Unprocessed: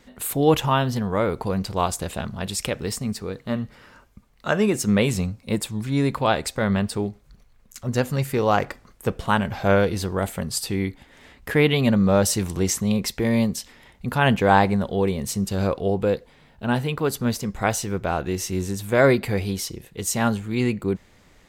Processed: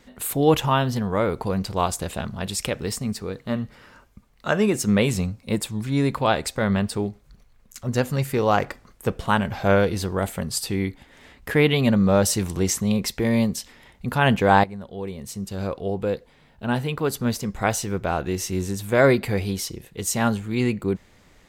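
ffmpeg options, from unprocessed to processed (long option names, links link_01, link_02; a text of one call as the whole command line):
ffmpeg -i in.wav -filter_complex "[0:a]asplit=2[link_01][link_02];[link_01]atrim=end=14.64,asetpts=PTS-STARTPTS,afade=type=out:start_time=14.636:duration=0.004:curve=hsin:silence=0.16788[link_03];[link_02]atrim=start=14.64,asetpts=PTS-STARTPTS,afade=type=in:duration=3.35:curve=qsin:silence=0.16788[link_04];[link_03][link_04]concat=n=2:v=0:a=1" out.wav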